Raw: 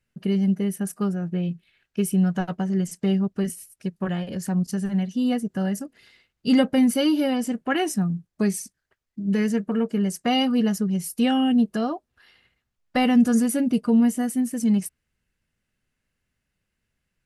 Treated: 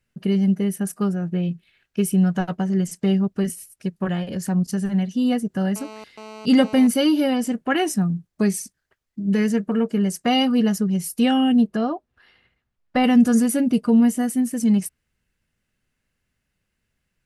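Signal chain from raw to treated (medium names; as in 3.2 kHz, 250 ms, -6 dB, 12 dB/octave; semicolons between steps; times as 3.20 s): 5.76–6.87 s: mobile phone buzz -41 dBFS; 11.67–13.04 s: treble shelf 4.3 kHz -11.5 dB; trim +2.5 dB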